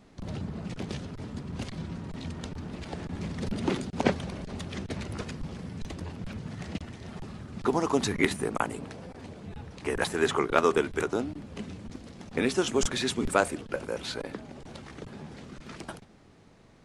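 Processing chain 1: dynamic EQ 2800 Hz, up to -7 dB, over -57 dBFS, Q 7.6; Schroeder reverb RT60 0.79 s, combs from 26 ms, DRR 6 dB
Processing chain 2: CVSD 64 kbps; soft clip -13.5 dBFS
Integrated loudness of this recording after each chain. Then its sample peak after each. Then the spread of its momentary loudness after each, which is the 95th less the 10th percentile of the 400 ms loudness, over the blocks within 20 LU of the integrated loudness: -30.5, -33.0 LUFS; -5.0, -13.5 dBFS; 17, 16 LU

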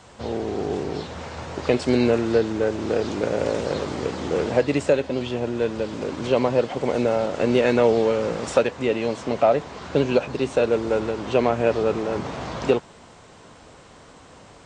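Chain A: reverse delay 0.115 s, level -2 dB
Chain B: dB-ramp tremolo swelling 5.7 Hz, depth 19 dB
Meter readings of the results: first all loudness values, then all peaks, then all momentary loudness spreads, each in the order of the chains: -21.0, -29.5 LUFS; -4.0, -6.5 dBFS; 9, 10 LU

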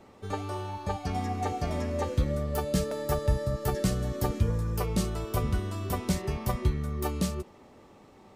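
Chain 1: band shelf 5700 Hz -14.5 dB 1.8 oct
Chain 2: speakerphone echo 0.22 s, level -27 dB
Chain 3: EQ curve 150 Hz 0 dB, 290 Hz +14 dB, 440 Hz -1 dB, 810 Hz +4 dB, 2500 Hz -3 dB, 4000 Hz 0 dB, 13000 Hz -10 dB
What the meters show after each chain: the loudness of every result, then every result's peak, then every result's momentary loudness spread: -31.0, -31.0, -27.5 LUFS; -13.0, -13.0, -9.5 dBFS; 6, 6, 4 LU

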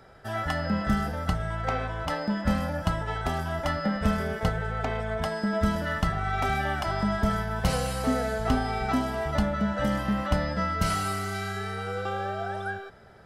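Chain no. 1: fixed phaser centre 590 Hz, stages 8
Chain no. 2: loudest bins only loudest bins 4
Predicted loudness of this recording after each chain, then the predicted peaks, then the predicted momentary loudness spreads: -30.5, -32.0 LUFS; -14.0, -16.5 dBFS; 7, 7 LU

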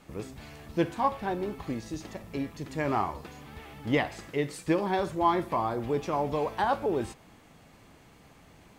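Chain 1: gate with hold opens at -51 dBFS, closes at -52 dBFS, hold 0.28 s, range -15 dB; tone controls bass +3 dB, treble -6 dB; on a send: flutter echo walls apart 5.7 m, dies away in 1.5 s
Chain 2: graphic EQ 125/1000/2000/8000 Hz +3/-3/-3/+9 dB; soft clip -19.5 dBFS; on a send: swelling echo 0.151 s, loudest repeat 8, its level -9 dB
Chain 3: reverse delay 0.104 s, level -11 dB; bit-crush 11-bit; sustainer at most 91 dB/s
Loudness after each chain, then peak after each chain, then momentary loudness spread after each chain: -24.5, -29.5, -29.5 LUFS; -9.5, -14.5, -11.5 dBFS; 14, 5, 14 LU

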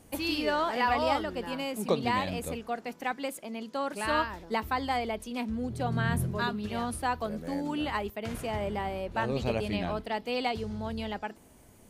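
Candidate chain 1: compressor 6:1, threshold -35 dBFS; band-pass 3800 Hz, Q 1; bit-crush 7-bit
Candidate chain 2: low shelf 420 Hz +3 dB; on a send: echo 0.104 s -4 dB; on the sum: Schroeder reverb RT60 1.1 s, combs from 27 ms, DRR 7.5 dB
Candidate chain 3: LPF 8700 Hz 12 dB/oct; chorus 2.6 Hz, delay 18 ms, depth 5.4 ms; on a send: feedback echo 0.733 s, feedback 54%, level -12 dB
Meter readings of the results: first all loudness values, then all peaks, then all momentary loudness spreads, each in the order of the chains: -48.5, -28.5, -34.5 LUFS; -30.0, -10.5, -15.5 dBFS; 10, 7, 7 LU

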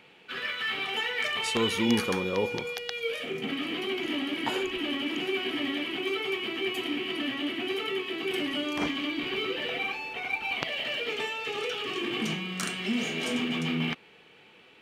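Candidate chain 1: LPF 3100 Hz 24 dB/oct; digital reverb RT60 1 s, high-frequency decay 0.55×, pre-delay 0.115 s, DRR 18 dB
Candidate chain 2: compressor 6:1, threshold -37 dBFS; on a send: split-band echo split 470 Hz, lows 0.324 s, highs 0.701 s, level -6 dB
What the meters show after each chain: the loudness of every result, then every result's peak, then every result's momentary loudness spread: -30.5, -37.5 LUFS; -9.5, -18.0 dBFS; 5, 2 LU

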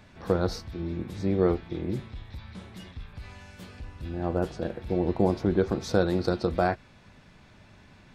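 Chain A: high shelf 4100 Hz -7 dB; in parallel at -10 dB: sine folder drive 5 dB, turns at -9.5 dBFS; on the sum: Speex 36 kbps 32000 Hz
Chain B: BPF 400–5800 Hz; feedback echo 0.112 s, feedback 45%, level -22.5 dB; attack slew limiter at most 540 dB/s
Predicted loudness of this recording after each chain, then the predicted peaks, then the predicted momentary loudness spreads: -23.5, -32.0 LUFS; -7.0, -12.5 dBFS; 20, 21 LU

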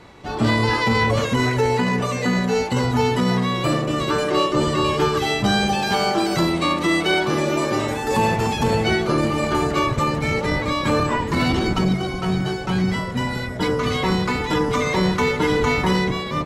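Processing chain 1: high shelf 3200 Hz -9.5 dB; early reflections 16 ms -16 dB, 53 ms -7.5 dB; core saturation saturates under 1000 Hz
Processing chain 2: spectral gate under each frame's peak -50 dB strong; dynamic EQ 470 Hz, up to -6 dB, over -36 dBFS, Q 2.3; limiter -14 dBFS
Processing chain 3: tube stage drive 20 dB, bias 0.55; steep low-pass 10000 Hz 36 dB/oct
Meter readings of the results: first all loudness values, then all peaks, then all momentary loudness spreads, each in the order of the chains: -24.0, -23.0, -25.0 LUFS; -7.5, -14.0, -17.0 dBFS; 4, 2, 3 LU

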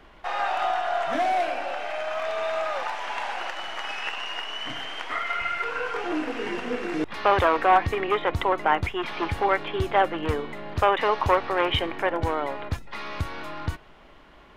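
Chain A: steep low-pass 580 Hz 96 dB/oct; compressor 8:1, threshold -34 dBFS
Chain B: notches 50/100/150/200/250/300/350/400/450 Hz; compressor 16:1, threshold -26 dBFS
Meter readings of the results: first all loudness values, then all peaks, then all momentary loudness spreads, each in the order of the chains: -41.0, -31.5 LUFS; -24.0, -12.5 dBFS; 12, 5 LU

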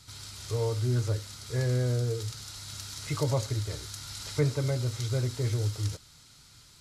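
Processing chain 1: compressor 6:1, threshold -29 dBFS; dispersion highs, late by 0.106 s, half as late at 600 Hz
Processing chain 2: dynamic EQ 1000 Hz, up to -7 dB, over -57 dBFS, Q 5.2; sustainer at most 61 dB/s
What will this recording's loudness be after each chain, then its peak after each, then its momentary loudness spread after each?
-35.0, -30.5 LUFS; -20.5, -15.0 dBFS; 11, 11 LU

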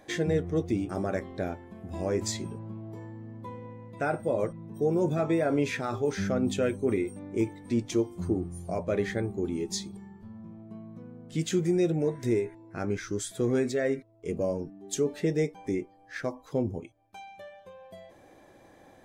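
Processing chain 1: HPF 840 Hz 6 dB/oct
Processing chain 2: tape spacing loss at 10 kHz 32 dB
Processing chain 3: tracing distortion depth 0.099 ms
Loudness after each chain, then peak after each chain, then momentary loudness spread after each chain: -37.0, -31.5, -30.0 LUFS; -20.0, -17.0, -15.5 dBFS; 18, 18, 19 LU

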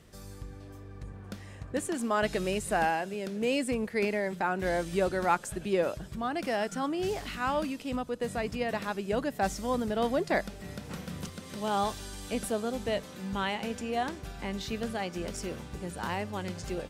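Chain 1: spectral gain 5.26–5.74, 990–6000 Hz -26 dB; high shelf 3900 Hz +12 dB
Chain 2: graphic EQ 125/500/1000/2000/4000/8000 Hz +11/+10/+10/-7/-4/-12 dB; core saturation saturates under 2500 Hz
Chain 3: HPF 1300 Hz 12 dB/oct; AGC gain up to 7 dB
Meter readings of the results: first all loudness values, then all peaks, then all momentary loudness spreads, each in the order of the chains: -30.5, -27.0, -32.0 LUFS; -13.5, -6.0, -11.0 dBFS; 11, 13, 10 LU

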